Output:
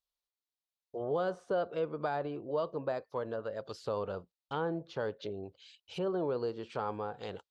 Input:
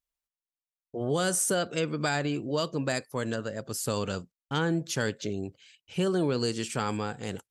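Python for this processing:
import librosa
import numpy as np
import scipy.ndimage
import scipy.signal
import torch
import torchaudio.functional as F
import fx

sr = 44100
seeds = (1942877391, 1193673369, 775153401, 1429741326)

y = fx.env_lowpass_down(x, sr, base_hz=1200.0, full_db=-27.5)
y = fx.cheby_harmonics(y, sr, harmonics=(4,), levels_db=(-44,), full_scale_db=-17.0)
y = fx.graphic_eq(y, sr, hz=(125, 250, 500, 1000, 2000, 4000, 8000), db=(-7, -8, 4, 4, -6, 10, -4))
y = F.gain(torch.from_numpy(y), -4.5).numpy()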